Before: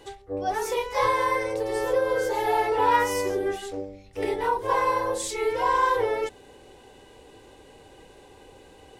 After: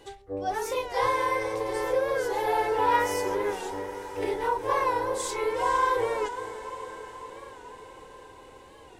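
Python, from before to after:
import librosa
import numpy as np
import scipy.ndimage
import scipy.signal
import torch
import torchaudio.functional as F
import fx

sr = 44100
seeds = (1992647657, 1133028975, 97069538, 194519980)

p1 = x + fx.echo_diffused(x, sr, ms=470, feedback_pct=65, wet_db=-12.0, dry=0)
p2 = fx.record_warp(p1, sr, rpm=45.0, depth_cents=100.0)
y = F.gain(torch.from_numpy(p2), -2.5).numpy()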